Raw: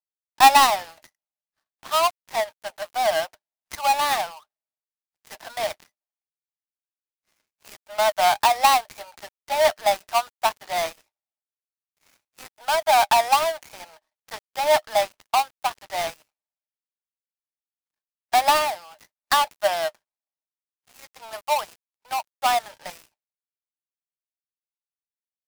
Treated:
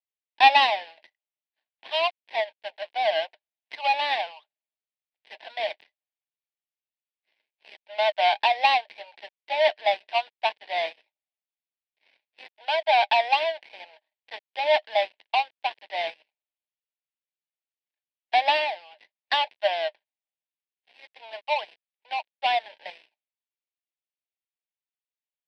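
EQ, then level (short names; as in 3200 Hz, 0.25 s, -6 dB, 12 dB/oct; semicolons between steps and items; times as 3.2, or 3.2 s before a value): BPF 650–3900 Hz; air absorption 79 m; fixed phaser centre 3000 Hz, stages 4; +4.5 dB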